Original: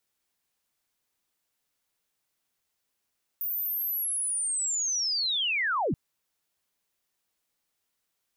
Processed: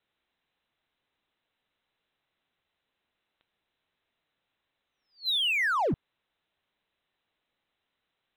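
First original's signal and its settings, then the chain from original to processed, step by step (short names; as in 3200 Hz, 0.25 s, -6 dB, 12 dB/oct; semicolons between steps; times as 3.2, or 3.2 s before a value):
chirp linear 15000 Hz -> 100 Hz -28 dBFS -> -24 dBFS 2.53 s
Chebyshev low-pass 4000 Hz, order 10; in parallel at -3.5 dB: hard clip -38.5 dBFS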